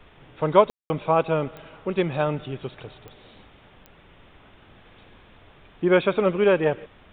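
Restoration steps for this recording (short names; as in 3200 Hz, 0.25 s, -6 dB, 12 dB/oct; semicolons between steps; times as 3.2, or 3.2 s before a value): de-click; room tone fill 0.7–0.9; expander -45 dBFS, range -21 dB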